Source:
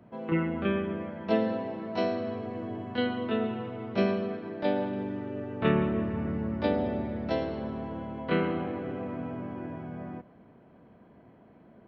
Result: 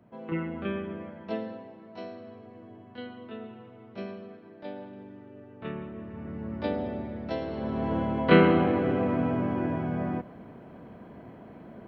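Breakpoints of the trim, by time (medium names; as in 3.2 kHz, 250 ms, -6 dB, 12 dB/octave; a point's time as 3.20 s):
1.08 s -4 dB
1.74 s -12 dB
5.95 s -12 dB
6.55 s -3 dB
7.40 s -3 dB
7.93 s +9 dB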